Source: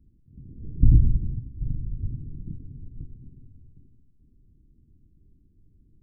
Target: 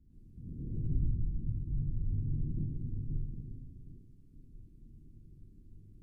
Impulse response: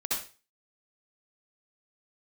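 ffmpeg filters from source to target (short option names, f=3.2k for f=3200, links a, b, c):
-filter_complex "[0:a]acompressor=threshold=-32dB:ratio=5[a];[1:a]atrim=start_sample=2205,asetrate=27783,aresample=44100[b];[a][b]afir=irnorm=-1:irlink=0,volume=-5dB"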